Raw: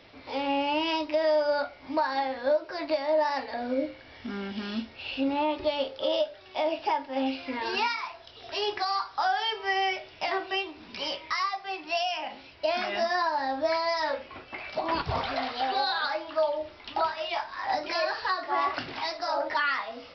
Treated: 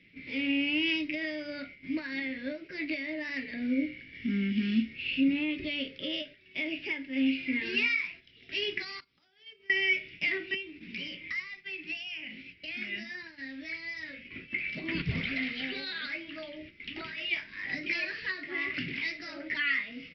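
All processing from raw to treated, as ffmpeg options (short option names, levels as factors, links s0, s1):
-filter_complex "[0:a]asettb=1/sr,asplit=3[s0][s1][s2];[s0]atrim=end=9.004[s3];[s1]atrim=start=9:end=9.7,asetpts=PTS-STARTPTS,afade=t=in:d=0.004:c=qsin,afade=t=out:st=0.696:d=0.004:c=qsin,agate=range=0.447:threshold=0.0158:ratio=16:release=100:detection=peak,equalizer=f=1700:t=o:w=0.8:g=-9.5,acompressor=threshold=0.00794:ratio=12:attack=3.2:release=140:knee=1:detection=peak[s4];[s2]atrim=start=9.696[s5];[s3][s4]acrossfade=d=0.004:c1=hsin:c2=qsin[s6];[s6][s5]acrossfade=d=0.004:c1=qsin:c2=hsin,asettb=1/sr,asplit=3[s7][s8][s9];[s7]atrim=end=10.544[s10];[s8]atrim=start=10.54:end=14.28,asetpts=PTS-STARTPTS,afade=t=in:d=0.004:c=qsin,afade=t=out:st=3.736:d=0.004:c=qsin,bandreject=f=50:t=h:w=6,bandreject=f=100:t=h:w=6,bandreject=f=150:t=h:w=6,bandreject=f=200:t=h:w=6,bandreject=f=250:t=h:w=6,bandreject=f=300:t=h:w=6,bandreject=f=350:t=h:w=6,acrossover=split=220|1600[s11][s12][s13];[s11]acompressor=threshold=0.00178:ratio=4[s14];[s12]acompressor=threshold=0.0112:ratio=4[s15];[s13]acompressor=threshold=0.01:ratio=4[s16];[s14][s15][s16]amix=inputs=3:normalize=0[s17];[s9]atrim=start=14.276[s18];[s10][s17]acrossfade=d=0.004:c1=hsin:c2=qsin[s19];[s19][s18]acrossfade=d=0.004:c1=qsin:c2=hsin,firequalizer=gain_entry='entry(100,0);entry(160,12);entry(820,-29);entry(2100,11);entry(4000,-6)':delay=0.05:min_phase=1,agate=range=0.398:threshold=0.00562:ratio=16:detection=peak,volume=0.794"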